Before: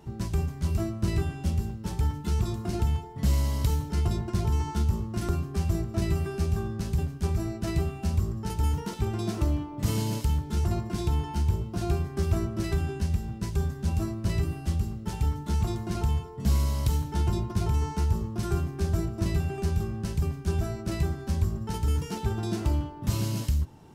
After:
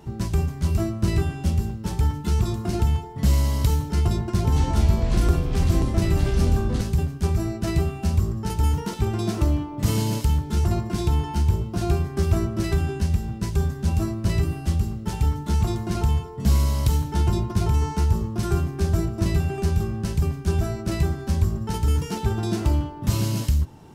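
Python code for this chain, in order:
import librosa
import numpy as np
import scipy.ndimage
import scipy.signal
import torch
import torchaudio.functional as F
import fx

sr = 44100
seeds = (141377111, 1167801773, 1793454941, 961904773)

y = fx.echo_pitch(x, sr, ms=186, semitones=-5, count=3, db_per_echo=-3.0, at=(4.25, 6.81))
y = F.gain(torch.from_numpy(y), 5.0).numpy()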